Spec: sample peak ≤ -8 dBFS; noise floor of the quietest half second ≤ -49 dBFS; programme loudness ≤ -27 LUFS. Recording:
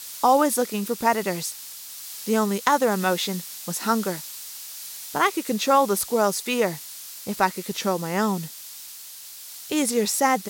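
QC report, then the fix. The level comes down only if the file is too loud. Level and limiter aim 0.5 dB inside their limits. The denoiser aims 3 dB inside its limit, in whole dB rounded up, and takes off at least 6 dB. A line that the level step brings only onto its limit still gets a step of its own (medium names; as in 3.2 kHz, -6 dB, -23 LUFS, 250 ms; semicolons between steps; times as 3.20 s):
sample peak -5.5 dBFS: fail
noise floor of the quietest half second -41 dBFS: fail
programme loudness -23.5 LUFS: fail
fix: noise reduction 7 dB, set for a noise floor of -41 dBFS; trim -4 dB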